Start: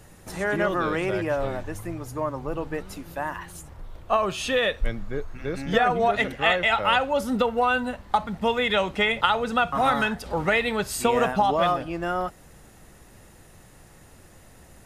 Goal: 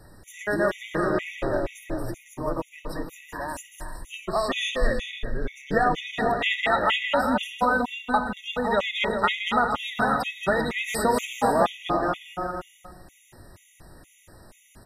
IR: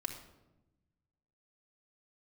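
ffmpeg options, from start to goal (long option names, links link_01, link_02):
-filter_complex "[0:a]asettb=1/sr,asplit=3[link_01][link_02][link_03];[link_01]atrim=end=3.324[link_04];[link_02]atrim=start=3.32:end=4.18,asetpts=PTS-STARTPTS,afade=type=in:duration=0.004:curve=qsin,afade=type=out:start_time=0.856:duration=0.004:curve=qsin,equalizer=frequency=7800:width_type=o:width=2.5:gain=3.5[link_05];[link_03]atrim=start=4.176[link_06];[link_04][link_05]acrossfade=duration=0.004:curve1=hsin:curve2=qsin[link_07];[link_07][link_06]acrossfade=duration=0.004:curve1=qsin:curve2=hsin,aecho=1:1:230|391|503.7|582.6|637.8:0.631|0.398|0.251|0.158|0.1,asplit=2[link_08][link_09];[1:a]atrim=start_sample=2205[link_10];[link_09][link_10]afir=irnorm=-1:irlink=0,volume=-2dB[link_11];[link_08][link_11]amix=inputs=2:normalize=0,afftfilt=real='re*gt(sin(2*PI*2.1*pts/sr)*(1-2*mod(floor(b*sr/1024/1900),2)),0)':imag='im*gt(sin(2*PI*2.1*pts/sr)*(1-2*mod(floor(b*sr/1024/1900),2)),0)':win_size=1024:overlap=0.75,volume=-4.5dB"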